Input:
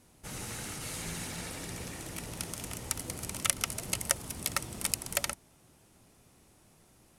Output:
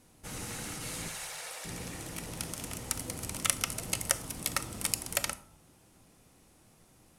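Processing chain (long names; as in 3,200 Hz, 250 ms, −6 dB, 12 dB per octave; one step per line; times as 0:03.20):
0:01.08–0:01.65: inverse Chebyshev high-pass filter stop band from 200 Hz, stop band 50 dB
on a send: convolution reverb RT60 0.55 s, pre-delay 4 ms, DRR 11.5 dB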